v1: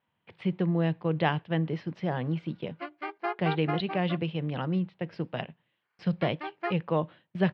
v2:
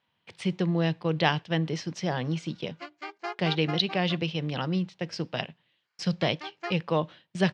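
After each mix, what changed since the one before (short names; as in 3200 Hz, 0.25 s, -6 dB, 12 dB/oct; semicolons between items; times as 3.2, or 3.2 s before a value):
background -5.5 dB; master: remove air absorption 430 m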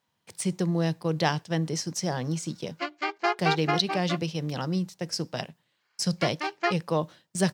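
speech: remove synth low-pass 3000 Hz, resonance Q 2; background +9.5 dB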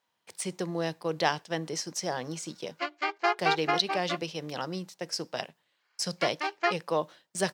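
master: add tone controls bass -14 dB, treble -2 dB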